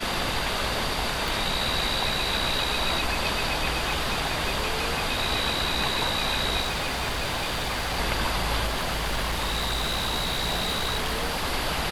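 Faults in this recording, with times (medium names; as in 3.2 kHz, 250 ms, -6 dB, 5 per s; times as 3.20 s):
1.28 s: pop
3.76–4.66 s: clipped -20 dBFS
6.60–7.99 s: clipped -24 dBFS
8.66–11.46 s: clipped -23 dBFS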